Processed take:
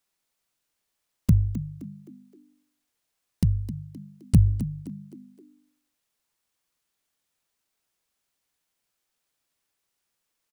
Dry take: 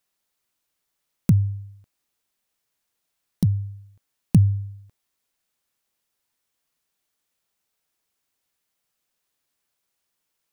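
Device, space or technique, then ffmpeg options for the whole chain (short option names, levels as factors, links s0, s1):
octave pedal: -filter_complex "[0:a]asplit=2[s0][s1];[s1]asetrate=22050,aresample=44100,atempo=2,volume=0.631[s2];[s0][s2]amix=inputs=2:normalize=0,asplit=5[s3][s4][s5][s6][s7];[s4]adelay=260,afreqshift=50,volume=0.211[s8];[s5]adelay=520,afreqshift=100,volume=0.0822[s9];[s6]adelay=780,afreqshift=150,volume=0.032[s10];[s7]adelay=1040,afreqshift=200,volume=0.0126[s11];[s3][s8][s9][s10][s11]amix=inputs=5:normalize=0,volume=0.708"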